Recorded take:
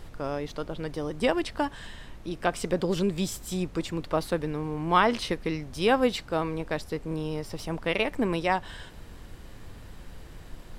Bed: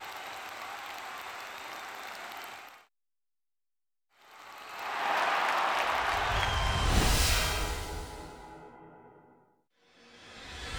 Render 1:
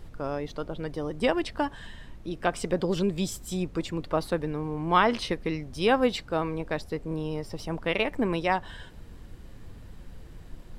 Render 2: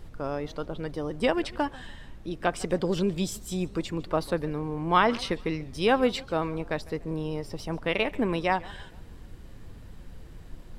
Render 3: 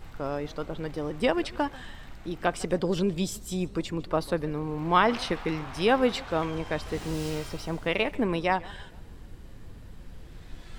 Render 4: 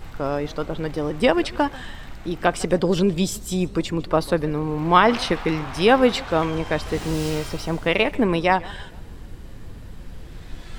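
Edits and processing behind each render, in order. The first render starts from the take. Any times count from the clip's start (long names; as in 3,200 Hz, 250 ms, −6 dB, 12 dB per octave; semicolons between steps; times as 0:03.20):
broadband denoise 6 dB, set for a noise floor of −46 dBFS
feedback echo with a swinging delay time 145 ms, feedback 41%, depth 191 cents, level −21.5 dB
mix in bed −13.5 dB
level +7 dB; brickwall limiter −3 dBFS, peak gain reduction 1.5 dB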